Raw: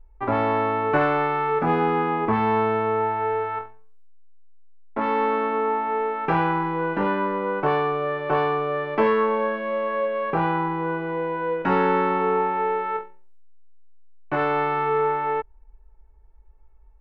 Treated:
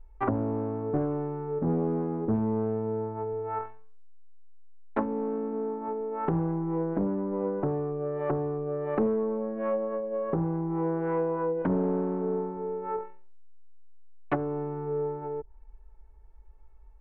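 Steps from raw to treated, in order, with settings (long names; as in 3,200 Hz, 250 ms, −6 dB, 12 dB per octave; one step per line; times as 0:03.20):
treble cut that deepens with the level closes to 320 Hz, closed at −20.5 dBFS
highs frequency-modulated by the lows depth 0.33 ms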